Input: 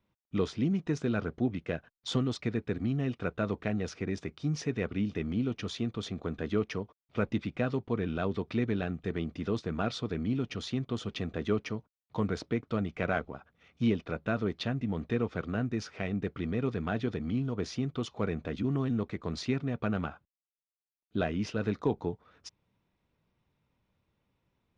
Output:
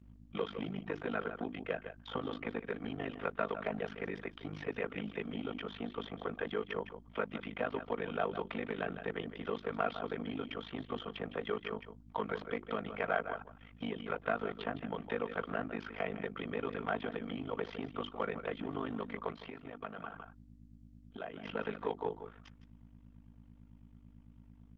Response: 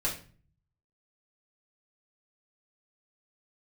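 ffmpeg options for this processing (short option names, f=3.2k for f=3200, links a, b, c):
-filter_complex "[0:a]highpass=f=110:w=0.5412,highpass=f=110:w=1.3066,aeval=exprs='val(0)+0.00562*(sin(2*PI*60*n/s)+sin(2*PI*2*60*n/s)/2+sin(2*PI*3*60*n/s)/3+sin(2*PI*4*60*n/s)/4+sin(2*PI*5*60*n/s)/5)':c=same,equalizer=f=3.2k:w=7.3:g=12,bandreject=f=50:t=h:w=6,bandreject=f=100:t=h:w=6,bandreject=f=150:t=h:w=6,bandreject=f=200:t=h:w=6,bandreject=f=250:t=h:w=6,bandreject=f=300:t=h:w=6,bandreject=f=350:t=h:w=6,aecho=1:1:4.4:0.4,asplit=2[a][b];[b]adelay=157.4,volume=-13dB,highshelf=f=4k:g=-3.54[c];[a][c]amix=inputs=2:normalize=0,acrossover=split=1800|4100[d][e][f];[d]acompressor=threshold=-29dB:ratio=4[g];[e]acompressor=threshold=-45dB:ratio=4[h];[f]acompressor=threshold=-59dB:ratio=4[i];[g][h][i]amix=inputs=3:normalize=0,tremolo=f=51:d=0.947,asoftclip=type=tanh:threshold=-25dB,asplit=3[j][k][l];[j]afade=t=out:st=19.31:d=0.02[m];[k]acompressor=threshold=-42dB:ratio=8,afade=t=in:st=19.31:d=0.02,afade=t=out:st=21.43:d=0.02[n];[l]afade=t=in:st=21.43:d=0.02[o];[m][n][o]amix=inputs=3:normalize=0,acrossover=split=510 2600:gain=0.2 1 0.0708[p][q][r];[p][q][r]amix=inputs=3:normalize=0,volume=9dB" -ar 48000 -c:a libopus -b:a 24k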